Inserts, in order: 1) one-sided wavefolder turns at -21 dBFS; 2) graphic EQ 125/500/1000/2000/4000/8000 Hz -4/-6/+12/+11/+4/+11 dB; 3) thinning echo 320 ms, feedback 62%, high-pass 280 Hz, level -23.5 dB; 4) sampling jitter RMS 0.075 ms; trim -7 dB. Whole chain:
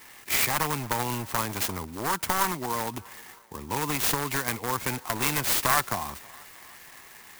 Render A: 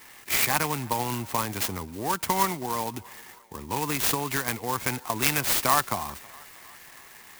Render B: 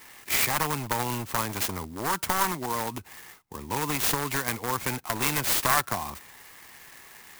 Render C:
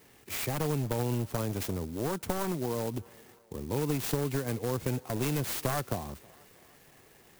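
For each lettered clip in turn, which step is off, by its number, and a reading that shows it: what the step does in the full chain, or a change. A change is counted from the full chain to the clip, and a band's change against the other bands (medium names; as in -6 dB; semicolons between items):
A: 1, distortion -8 dB; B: 3, momentary loudness spread change +1 LU; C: 2, 125 Hz band +13.5 dB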